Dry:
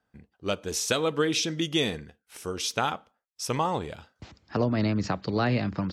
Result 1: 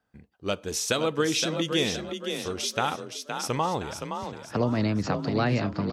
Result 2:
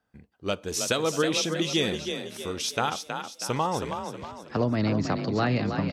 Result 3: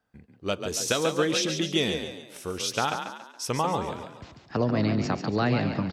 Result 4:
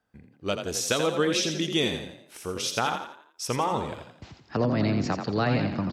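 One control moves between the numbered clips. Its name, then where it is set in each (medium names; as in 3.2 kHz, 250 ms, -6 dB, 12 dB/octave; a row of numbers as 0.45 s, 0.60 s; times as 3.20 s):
frequency-shifting echo, time: 518 ms, 320 ms, 140 ms, 85 ms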